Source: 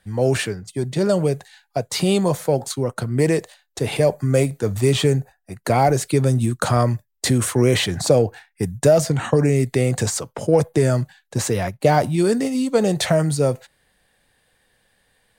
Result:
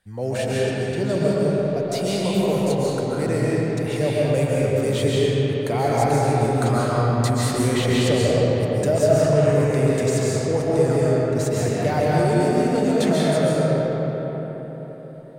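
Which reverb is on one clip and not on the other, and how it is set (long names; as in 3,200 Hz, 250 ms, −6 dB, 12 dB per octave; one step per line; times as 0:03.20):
comb and all-pass reverb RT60 4.5 s, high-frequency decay 0.5×, pre-delay 100 ms, DRR −7 dB
level −8.5 dB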